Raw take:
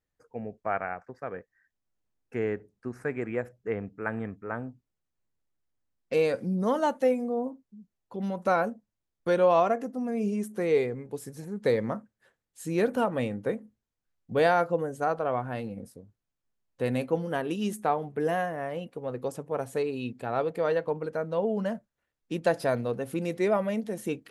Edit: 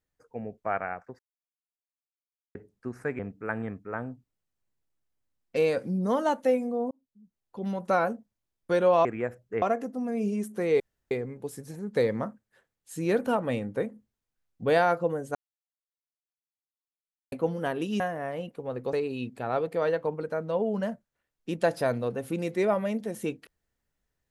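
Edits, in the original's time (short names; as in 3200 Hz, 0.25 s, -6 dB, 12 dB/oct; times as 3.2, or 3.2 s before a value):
1.19–2.55 mute
3.19–3.76 move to 9.62
7.48–8.19 fade in
10.8 insert room tone 0.31 s
15.04–17.01 mute
17.69–18.38 cut
19.31–19.76 cut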